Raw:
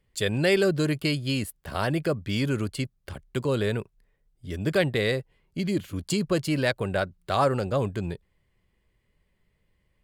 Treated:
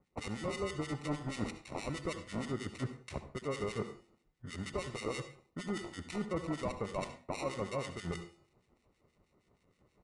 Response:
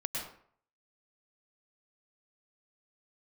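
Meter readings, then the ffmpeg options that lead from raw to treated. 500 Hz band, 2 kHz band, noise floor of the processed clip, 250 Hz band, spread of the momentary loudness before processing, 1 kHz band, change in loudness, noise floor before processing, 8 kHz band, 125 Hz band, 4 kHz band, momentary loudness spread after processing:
-13.0 dB, -13.5 dB, -76 dBFS, -12.0 dB, 11 LU, -10.5 dB, -13.0 dB, -72 dBFS, -9.5 dB, -13.5 dB, -14.0 dB, 7 LU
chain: -filter_complex "[0:a]highpass=f=170:p=1,bandreject=f=346.9:t=h:w=4,bandreject=f=693.8:t=h:w=4,bandreject=f=1.0407k:t=h:w=4,bandreject=f=1.3876k:t=h:w=4,bandreject=f=1.7345k:t=h:w=4,bandreject=f=2.0814k:t=h:w=4,bandreject=f=2.4283k:t=h:w=4,bandreject=f=2.7752k:t=h:w=4,bandreject=f=3.1221k:t=h:w=4,bandreject=f=3.469k:t=h:w=4,bandreject=f=3.8159k:t=h:w=4,bandreject=f=4.1628k:t=h:w=4,bandreject=f=4.5097k:t=h:w=4,bandreject=f=4.8566k:t=h:w=4,bandreject=f=5.2035k:t=h:w=4,bandreject=f=5.5504k:t=h:w=4,bandreject=f=5.8973k:t=h:w=4,bandreject=f=6.2442k:t=h:w=4,bandreject=f=6.5911k:t=h:w=4,bandreject=f=6.938k:t=h:w=4,bandreject=f=7.2849k:t=h:w=4,bandreject=f=7.6318k:t=h:w=4,bandreject=f=7.9787k:t=h:w=4,bandreject=f=8.3256k:t=h:w=4,bandreject=f=8.6725k:t=h:w=4,bandreject=f=9.0194k:t=h:w=4,bandreject=f=9.3663k:t=h:w=4,bandreject=f=9.7132k:t=h:w=4,bandreject=f=10.0601k:t=h:w=4,bandreject=f=10.407k:t=h:w=4,bandreject=f=10.7539k:t=h:w=4,bandreject=f=11.1008k:t=h:w=4,bandreject=f=11.4477k:t=h:w=4,bandreject=f=11.7946k:t=h:w=4,bandreject=f=12.1415k:t=h:w=4,bandreject=f=12.4884k:t=h:w=4,bandreject=f=12.8353k:t=h:w=4,bandreject=f=13.1822k:t=h:w=4,bandreject=f=13.5291k:t=h:w=4,acrusher=samples=27:mix=1:aa=0.000001,alimiter=limit=-21.5dB:level=0:latency=1:release=253,areverse,acompressor=threshold=-40dB:ratio=6,areverse,equalizer=f=2k:t=o:w=0.28:g=5.5,acrossover=split=1600[a][b];[a]aeval=exprs='val(0)*(1-1/2+1/2*cos(2*PI*6.3*n/s))':c=same[c];[b]aeval=exprs='val(0)*(1-1/2-1/2*cos(2*PI*6.3*n/s))':c=same[d];[c][d]amix=inputs=2:normalize=0,asplit=2[e][f];[1:a]atrim=start_sample=2205,asetrate=70560,aresample=44100[g];[f][g]afir=irnorm=-1:irlink=0,volume=-4.5dB[h];[e][h]amix=inputs=2:normalize=0,aresample=22050,aresample=44100,volume=5.5dB"

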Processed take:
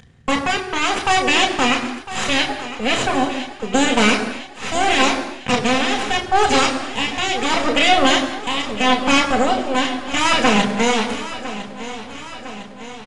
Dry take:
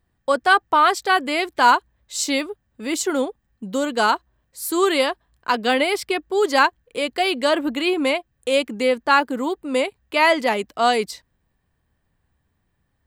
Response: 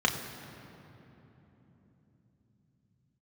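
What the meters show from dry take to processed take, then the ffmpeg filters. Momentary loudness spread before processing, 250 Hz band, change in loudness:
10 LU, +5.0 dB, +2.5 dB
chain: -filter_complex "[0:a]equalizer=f=970:t=o:w=1.6:g=-9.5,alimiter=limit=-16.5dB:level=0:latency=1,acompressor=mode=upward:threshold=-33dB:ratio=2.5,aeval=exprs='0.158*(cos(1*acos(clip(val(0)/0.158,-1,1)))-cos(1*PI/2))+0.0562*(cos(3*acos(clip(val(0)/0.158,-1,1)))-cos(3*PI/2))+0.0794*(cos(4*acos(clip(val(0)/0.158,-1,1)))-cos(4*PI/2))+0.01*(cos(5*acos(clip(val(0)/0.158,-1,1)))-cos(5*PI/2))+0.0158*(cos(8*acos(clip(val(0)/0.158,-1,1)))-cos(8*PI/2))':c=same,tremolo=f=0.76:d=0.53,aecho=1:1:1005|2010|3015|4020|5025|6030:0.2|0.118|0.0695|0.041|0.0242|0.0143[a];[1:a]atrim=start_sample=2205,afade=t=out:st=0.33:d=0.01,atrim=end_sample=14994[b];[a][b]afir=irnorm=-1:irlink=0,aresample=22050,aresample=44100,volume=-1dB"

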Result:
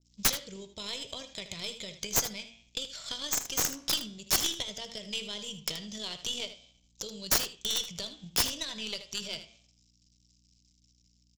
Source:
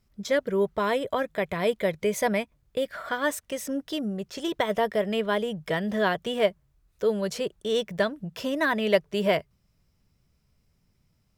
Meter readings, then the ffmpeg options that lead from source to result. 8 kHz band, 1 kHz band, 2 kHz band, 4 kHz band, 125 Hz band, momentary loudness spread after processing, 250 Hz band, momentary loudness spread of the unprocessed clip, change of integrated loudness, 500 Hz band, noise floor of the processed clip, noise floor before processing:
+10.5 dB, -12.5 dB, -10.0 dB, +4.5 dB, -9.5 dB, 13 LU, -14.5 dB, 7 LU, -4.5 dB, -19.5 dB, -68 dBFS, -70 dBFS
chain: -af "bass=f=250:g=11,treble=f=4k:g=12,bandreject=f=113.6:t=h:w=4,bandreject=f=227.2:t=h:w=4,bandreject=f=340.8:t=h:w=4,bandreject=f=454.4:t=h:w=4,bandreject=f=568:t=h:w=4,bandreject=f=681.6:t=h:w=4,bandreject=f=795.2:t=h:w=4,bandreject=f=908.8:t=h:w=4,bandreject=f=1.0224k:t=h:w=4,bandreject=f=1.136k:t=h:w=4,bandreject=f=1.2496k:t=h:w=4,bandreject=f=1.3632k:t=h:w=4,bandreject=f=1.4768k:t=h:w=4,bandreject=f=1.5904k:t=h:w=4,bandreject=f=1.704k:t=h:w=4,bandreject=f=1.8176k:t=h:w=4,bandreject=f=1.9312k:t=h:w=4,bandreject=f=2.0448k:t=h:w=4,bandreject=f=2.1584k:t=h:w=4,bandreject=f=2.272k:t=h:w=4,bandreject=f=2.3856k:t=h:w=4,bandreject=f=2.4992k:t=h:w=4,bandreject=f=2.6128k:t=h:w=4,bandreject=f=2.7264k:t=h:w=4,bandreject=f=2.84k:t=h:w=4,bandreject=f=2.9536k:t=h:w=4,bandreject=f=3.0672k:t=h:w=4,bandreject=f=3.1808k:t=h:w=4,bandreject=f=3.2944k:t=h:w=4,bandreject=f=3.408k:t=h:w=4,bandreject=f=3.5216k:t=h:w=4,acompressor=threshold=-27dB:ratio=8,aresample=16000,aeval=exprs='sgn(val(0))*max(abs(val(0))-0.0015,0)':c=same,aresample=44100,aexciter=amount=11.6:drive=6.4:freq=2.5k,tremolo=f=45:d=0.261,aeval=exprs='1.33*(cos(1*acos(clip(val(0)/1.33,-1,1)))-cos(1*PI/2))+0.0299*(cos(4*acos(clip(val(0)/1.33,-1,1)))-cos(4*PI/2))+0.266*(cos(5*acos(clip(val(0)/1.33,-1,1)))-cos(5*PI/2))+0.15*(cos(6*acos(clip(val(0)/1.33,-1,1)))-cos(6*PI/2))+0.211*(cos(7*acos(clip(val(0)/1.33,-1,1)))-cos(7*PI/2))':c=same,aeval=exprs='val(0)+0.002*(sin(2*PI*60*n/s)+sin(2*PI*2*60*n/s)/2+sin(2*PI*3*60*n/s)/3+sin(2*PI*4*60*n/s)/4+sin(2*PI*5*60*n/s)/5)':c=same,aeval=exprs='(mod(1.19*val(0)+1,2)-1)/1.19':c=same,flanger=delay=8.6:depth=7:regen=-86:speed=0.4:shape=triangular,aecho=1:1:78:0.251,adynamicequalizer=threshold=0.0178:dfrequency=2100:dqfactor=0.7:tfrequency=2100:tqfactor=0.7:attack=5:release=100:ratio=0.375:range=1.5:mode=cutabove:tftype=highshelf,volume=-8.5dB"

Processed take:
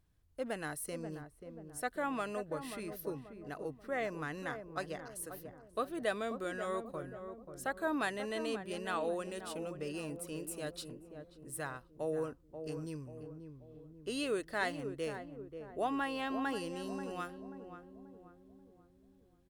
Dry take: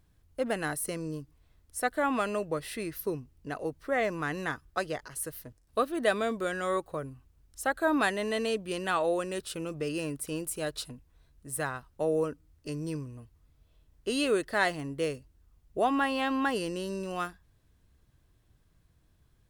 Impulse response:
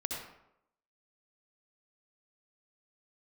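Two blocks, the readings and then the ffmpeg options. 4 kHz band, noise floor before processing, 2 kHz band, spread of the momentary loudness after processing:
-8.0 dB, -67 dBFS, -8.0 dB, 14 LU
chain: -filter_complex "[0:a]asplit=2[a][b];[b]adelay=535,lowpass=f=810:p=1,volume=-7dB,asplit=2[c][d];[d]adelay=535,lowpass=f=810:p=1,volume=0.54,asplit=2[e][f];[f]adelay=535,lowpass=f=810:p=1,volume=0.54,asplit=2[g][h];[h]adelay=535,lowpass=f=810:p=1,volume=0.54,asplit=2[i][j];[j]adelay=535,lowpass=f=810:p=1,volume=0.54,asplit=2[k][l];[l]adelay=535,lowpass=f=810:p=1,volume=0.54,asplit=2[m][n];[n]adelay=535,lowpass=f=810:p=1,volume=0.54[o];[a][c][e][g][i][k][m][o]amix=inputs=8:normalize=0,volume=-8dB"

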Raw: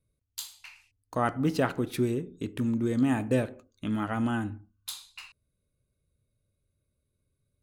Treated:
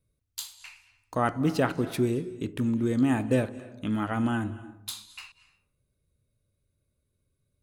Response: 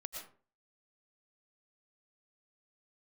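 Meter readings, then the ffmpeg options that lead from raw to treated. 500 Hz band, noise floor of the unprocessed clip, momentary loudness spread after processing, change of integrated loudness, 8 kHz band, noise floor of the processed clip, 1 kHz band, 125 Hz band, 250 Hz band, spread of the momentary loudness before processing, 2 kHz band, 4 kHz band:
+1.5 dB, -80 dBFS, 16 LU, +1.5 dB, +1.5 dB, -78 dBFS, +1.5 dB, +1.5 dB, +1.5 dB, 16 LU, +1.5 dB, +1.5 dB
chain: -filter_complex "[0:a]asplit=2[a][b];[b]lowshelf=f=370:g=11.5[c];[1:a]atrim=start_sample=2205,asetrate=22932,aresample=44100,lowshelf=f=500:g=-9.5[d];[c][d]afir=irnorm=-1:irlink=0,volume=-14dB[e];[a][e]amix=inputs=2:normalize=0"

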